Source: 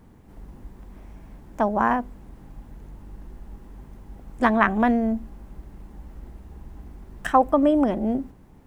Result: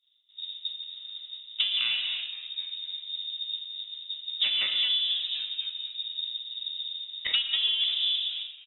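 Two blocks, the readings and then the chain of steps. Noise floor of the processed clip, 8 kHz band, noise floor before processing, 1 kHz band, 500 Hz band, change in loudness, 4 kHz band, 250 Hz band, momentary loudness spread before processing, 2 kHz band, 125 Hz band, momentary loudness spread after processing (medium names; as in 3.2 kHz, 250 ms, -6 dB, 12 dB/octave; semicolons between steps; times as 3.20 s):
-51 dBFS, no reading, -50 dBFS, under -30 dB, under -30 dB, -6.0 dB, +26.0 dB, under -40 dB, 12 LU, -6.0 dB, under -30 dB, 13 LU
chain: comb filter that takes the minimum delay 1.2 ms; bass shelf 440 Hz -3.5 dB; on a send: frequency-shifting echo 259 ms, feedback 54%, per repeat +140 Hz, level -21 dB; on the sum: expander -40 dBFS; tilt shelf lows +7.5 dB, about 1.1 kHz; frequency inversion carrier 3.7 kHz; gated-style reverb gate 370 ms falling, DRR 5 dB; compression 8:1, threshold -24 dBFS, peak gain reduction 14 dB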